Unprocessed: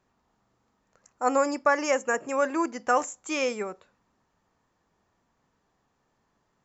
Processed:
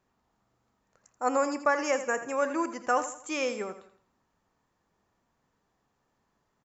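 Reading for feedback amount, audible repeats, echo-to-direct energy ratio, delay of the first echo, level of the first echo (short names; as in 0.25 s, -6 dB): 39%, 3, -11.5 dB, 83 ms, -12.0 dB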